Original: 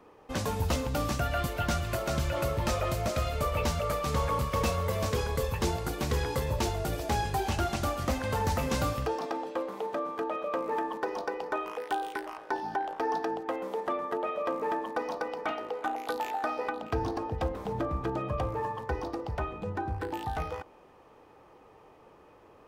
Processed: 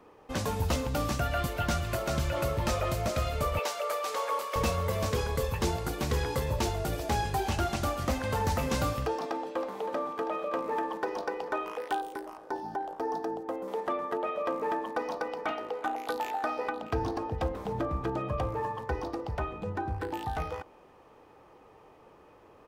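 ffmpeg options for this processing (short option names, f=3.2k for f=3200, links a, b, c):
-filter_complex "[0:a]asettb=1/sr,asplit=3[a][b][c];[a]atrim=end=3.594[d];[b]atrim=start=3.59:end=4.56,asetpts=PTS-STARTPTS,afade=t=in:d=0.004:c=qsin,afade=t=out:st=0.966:d=0.004:c=qsin,highpass=f=430:w=0.5412,highpass=f=430:w=1.3066[e];[c]atrim=start=4.556[f];[d][e]acrossfade=d=0.004:c1=hsin:c2=qsin[g];[g][f]acrossfade=d=0.004:c1=qsin:c2=hsin,asplit=2[h][i];[i]afade=t=in:st=9.28:d=0.01,afade=t=out:st=9.8:d=0.01,aecho=0:1:320|640|960|1280|1600|1920|2240|2560|2880|3200|3520|3840:0.375837|0.30067|0.240536|0.192429|0.153943|0.123154|0.0985235|0.0788188|0.0630551|0.050444|0.0403552|0.0322842[j];[h][j]amix=inputs=2:normalize=0,asettb=1/sr,asplit=3[k][l][m];[k]atrim=end=12.014[n];[l]atrim=start=12.01:end=13.68,asetpts=PTS-STARTPTS,afade=t=in:d=0.004:c=qsin,afade=t=out:st=1.666:d=0.004:c=qsin,equalizer=f=2.4k:t=o:w=2.1:g=-10.5[o];[m]atrim=start=13.676[p];[n][o]acrossfade=d=0.004:c1=hsin:c2=qsin[q];[q][p]acrossfade=d=0.004:c1=qsin:c2=hsin"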